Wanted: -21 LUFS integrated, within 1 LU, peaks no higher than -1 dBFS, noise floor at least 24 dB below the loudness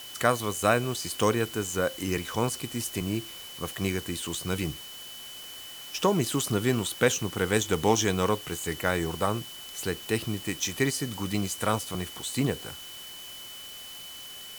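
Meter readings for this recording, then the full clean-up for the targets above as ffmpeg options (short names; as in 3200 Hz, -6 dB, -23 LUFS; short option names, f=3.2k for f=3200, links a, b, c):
steady tone 3000 Hz; tone level -43 dBFS; noise floor -43 dBFS; noise floor target -53 dBFS; loudness -28.5 LUFS; peak -7.0 dBFS; loudness target -21.0 LUFS
-> -af "bandreject=f=3k:w=30"
-af "afftdn=nr=10:nf=-43"
-af "volume=7.5dB,alimiter=limit=-1dB:level=0:latency=1"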